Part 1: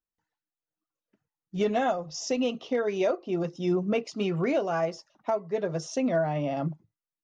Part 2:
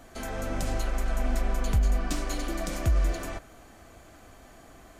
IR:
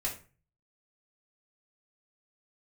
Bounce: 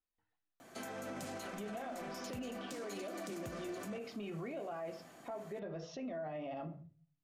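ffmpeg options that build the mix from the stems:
-filter_complex "[0:a]lowpass=f=4k:w=0.5412,lowpass=f=4k:w=1.3066,acompressor=threshold=-31dB:ratio=6,volume=-5.5dB,asplit=2[a][b];[b]volume=-4.5dB[c];[1:a]highpass=f=130:w=0.5412,highpass=f=130:w=1.3066,asoftclip=type=hard:threshold=-24dB,adelay=600,volume=-5dB[d];[2:a]atrim=start_sample=2205[e];[c][e]afir=irnorm=-1:irlink=0[f];[a][d][f]amix=inputs=3:normalize=0,alimiter=level_in=11.5dB:limit=-24dB:level=0:latency=1:release=69,volume=-11.5dB"

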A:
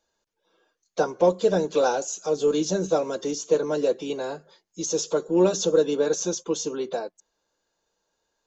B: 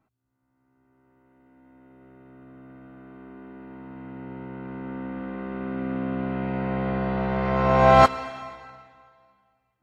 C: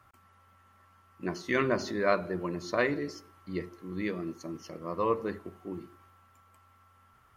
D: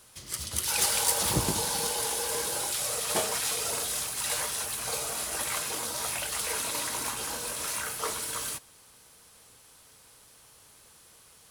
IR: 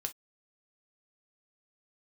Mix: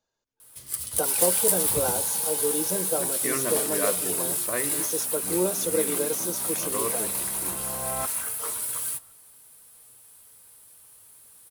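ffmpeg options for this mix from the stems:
-filter_complex "[0:a]volume=-6.5dB[a];[1:a]volume=-19dB[b];[2:a]adelay=1750,volume=-3.5dB[c];[3:a]flanger=delay=7:depth=3.1:regen=64:speed=0.34:shape=triangular,aexciter=amount=2.9:drive=8.5:freq=8.5k,adelay=400,volume=-1dB[d];[a][b][c][d]amix=inputs=4:normalize=0"

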